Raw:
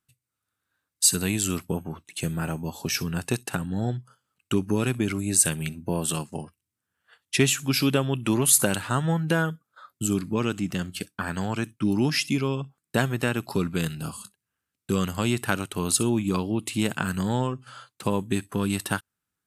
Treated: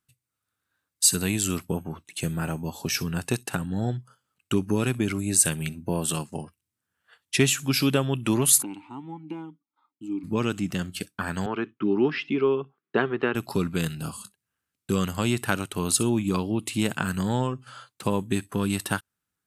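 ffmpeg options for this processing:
ffmpeg -i in.wav -filter_complex "[0:a]asplit=3[link_01][link_02][link_03];[link_01]afade=type=out:start_time=8.61:duration=0.02[link_04];[link_02]asplit=3[link_05][link_06][link_07];[link_05]bandpass=frequency=300:width_type=q:width=8,volume=0dB[link_08];[link_06]bandpass=frequency=870:width_type=q:width=8,volume=-6dB[link_09];[link_07]bandpass=frequency=2240:width_type=q:width=8,volume=-9dB[link_10];[link_08][link_09][link_10]amix=inputs=3:normalize=0,afade=type=in:start_time=8.61:duration=0.02,afade=type=out:start_time=10.23:duration=0.02[link_11];[link_03]afade=type=in:start_time=10.23:duration=0.02[link_12];[link_04][link_11][link_12]amix=inputs=3:normalize=0,asettb=1/sr,asplit=3[link_13][link_14][link_15];[link_13]atrim=end=11.464[link_16];[link_14]atrim=start=11.46:end=13.35,asetpts=PTS-STARTPTS,afade=type=in:duration=0.004:curve=qsin,afade=type=out:start_time=1.886:duration=0.004:curve=qsin,highpass=230,equalizer=frequency=400:width_type=q:width=4:gain=10,equalizer=frequency=590:width_type=q:width=4:gain=-5,equalizer=frequency=1200:width_type=q:width=4:gain=4,equalizer=frequency=2400:width_type=q:width=4:gain=-3,lowpass=frequency=3000:width=0.5412,lowpass=frequency=3000:width=1.3066[link_17];[link_15]atrim=start=13.346[link_18];[link_16][link_17]acrossfade=duration=0.004:curve1=hsin:curve2=qsin[link_19];[link_19][link_18]acrossfade=duration=0.004:curve1=qsin:curve2=hsin" out.wav

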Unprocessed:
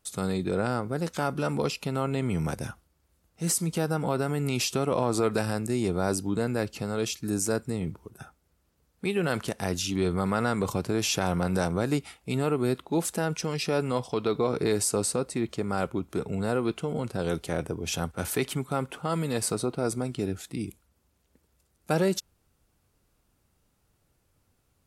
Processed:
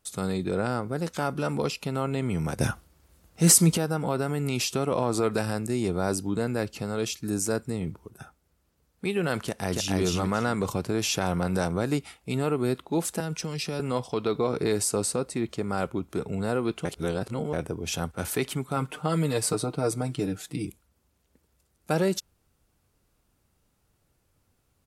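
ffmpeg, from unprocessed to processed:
ffmpeg -i in.wav -filter_complex "[0:a]asplit=2[link_01][link_02];[link_02]afade=type=in:start_time=9.44:duration=0.01,afade=type=out:start_time=9.98:duration=0.01,aecho=0:1:280|560|840:0.841395|0.168279|0.0336558[link_03];[link_01][link_03]amix=inputs=2:normalize=0,asettb=1/sr,asplit=3[link_04][link_05][link_06];[link_04]atrim=end=13.204[link_07];[link_05]atrim=start=13.2:end=13.8,asetpts=PTS-STARTPTS,afade=type=in:duration=0.004:curve=qsin,afade=type=out:start_time=0.596:duration=0.004:curve=qsin,acrossover=split=230|3000[link_08][link_09][link_10];[link_09]acompressor=threshold=-38dB:ratio=2:attack=3.2:release=140:knee=2.83:detection=peak[link_11];[link_08][link_11][link_10]amix=inputs=3:normalize=0[link_12];[link_06]atrim=start=13.796[link_13];[link_07][link_12]acrossfade=duration=0.004:curve1=hsin:curve2=qsin[link_14];[link_14][link_13]acrossfade=duration=0.004:curve1=qsin:curve2=hsin,asettb=1/sr,asplit=3[link_15][link_16][link_17];[link_15]atrim=end=18.764[link_18];[link_16]atrim=start=18.76:end=20.67,asetpts=PTS-STARTPTS,afade=type=in:duration=0.004:curve=qsin,afade=type=out:start_time=1.906:duration=0.004:curve=qsin,aecho=1:1:6.6:0.69,atrim=end_sample=84231[link_19];[link_17]atrim=start=20.666[link_20];[link_18][link_19]acrossfade=duration=0.004:curve1=hsin:curve2=qsin[link_21];[link_21][link_20]acrossfade=duration=0.004:curve1=qsin:curve2=hsin,asplit=5[link_22][link_23][link_24][link_25][link_26];[link_22]atrim=end=2.592[link_27];[link_23]atrim=start=2.588:end=3.772,asetpts=PTS-STARTPTS,volume=9.5dB[link_28];[link_24]atrim=start=3.768:end=16.852[link_29];[link_25]atrim=start=16.848:end=17.532,asetpts=PTS-STARTPTS,areverse[link_30];[link_26]atrim=start=17.528[link_31];[link_27][link_28]acrossfade=duration=0.004:curve1=hsin:curve2=hsin[link_32];[link_32][link_29]acrossfade=duration=0.004:curve1=hsin:curve2=hsin[link_33];[link_33][link_30]acrossfade=duration=0.004:curve1=hsin:curve2=hsin[link_34];[link_34][link_31]acrossfade=duration=0.004:curve1=hsin:curve2=hsin" out.wav

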